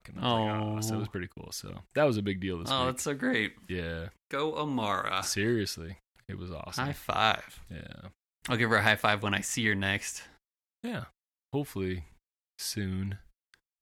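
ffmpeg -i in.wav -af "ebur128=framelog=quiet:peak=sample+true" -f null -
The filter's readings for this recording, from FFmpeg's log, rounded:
Integrated loudness:
  I:         -30.8 LUFS
  Threshold: -41.7 LUFS
Loudness range:
  LRA:         7.2 LU
  Threshold: -51.4 LUFS
  LRA low:   -36.1 LUFS
  LRA high:  -29.0 LUFS
Sample peak:
  Peak:       -7.9 dBFS
True peak:
  Peak:       -7.8 dBFS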